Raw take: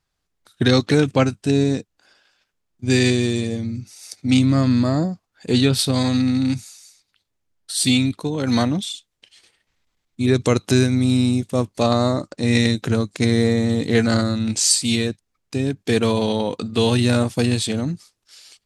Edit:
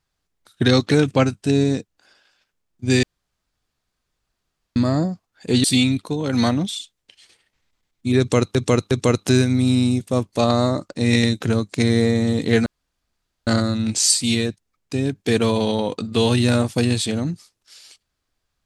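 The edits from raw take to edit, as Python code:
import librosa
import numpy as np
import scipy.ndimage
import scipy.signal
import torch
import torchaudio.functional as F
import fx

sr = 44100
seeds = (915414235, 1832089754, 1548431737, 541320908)

y = fx.edit(x, sr, fx.room_tone_fill(start_s=3.03, length_s=1.73),
    fx.cut(start_s=5.64, length_s=2.14),
    fx.repeat(start_s=10.33, length_s=0.36, count=3),
    fx.insert_room_tone(at_s=14.08, length_s=0.81), tone=tone)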